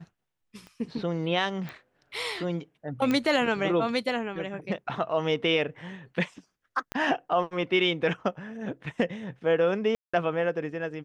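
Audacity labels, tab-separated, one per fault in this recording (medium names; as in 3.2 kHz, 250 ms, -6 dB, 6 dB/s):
0.670000	0.670000	pop -32 dBFS
1.690000	1.690000	pop -24 dBFS
3.110000	3.110000	pop -14 dBFS
6.920000	6.920000	pop -17 dBFS
9.950000	10.130000	dropout 185 ms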